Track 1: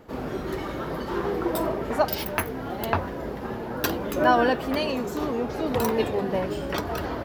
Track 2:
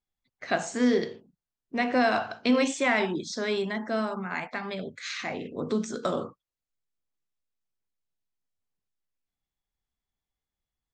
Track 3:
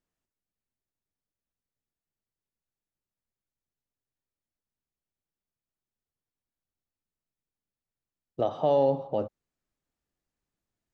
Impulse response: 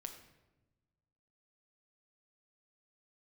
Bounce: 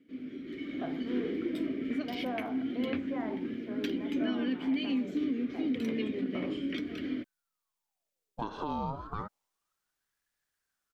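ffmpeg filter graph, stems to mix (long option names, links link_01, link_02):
-filter_complex "[0:a]asplit=3[link_01][link_02][link_03];[link_01]bandpass=frequency=270:width_type=q:width=8,volume=0dB[link_04];[link_02]bandpass=frequency=2290:width_type=q:width=8,volume=-6dB[link_05];[link_03]bandpass=frequency=3010:width_type=q:width=8,volume=-9dB[link_06];[link_04][link_05][link_06]amix=inputs=3:normalize=0,volume=-2dB[link_07];[1:a]lowpass=1000,adelay=300,volume=-12dB[link_08];[2:a]highshelf=frequency=2300:gain=8.5,acompressor=threshold=-26dB:ratio=6,aeval=exprs='val(0)*sin(2*PI*1000*n/s+1000*0.7/0.29*sin(2*PI*0.29*n/s))':channel_layout=same,volume=-6.5dB[link_09];[link_07][link_09]amix=inputs=2:normalize=0,dynaudnorm=framelen=420:gausssize=3:maxgain=8.5dB,alimiter=limit=-23.5dB:level=0:latency=1:release=166,volume=0dB[link_10];[link_08][link_10]amix=inputs=2:normalize=0"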